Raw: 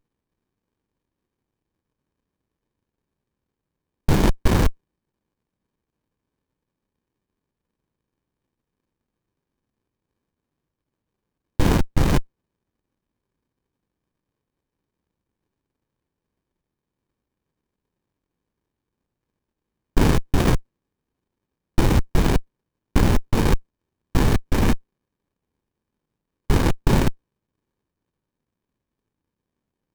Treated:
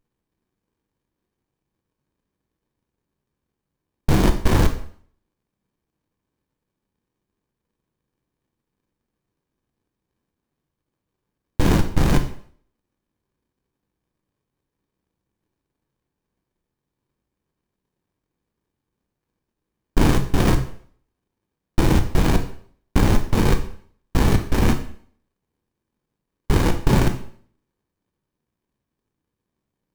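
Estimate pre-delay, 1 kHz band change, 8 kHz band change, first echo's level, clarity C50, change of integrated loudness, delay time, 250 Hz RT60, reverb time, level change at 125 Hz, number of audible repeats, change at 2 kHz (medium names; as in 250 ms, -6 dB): 8 ms, +1.0 dB, +1.0 dB, no echo, 10.5 dB, +1.0 dB, no echo, 0.55 s, 0.55 s, +1.0 dB, no echo, +1.0 dB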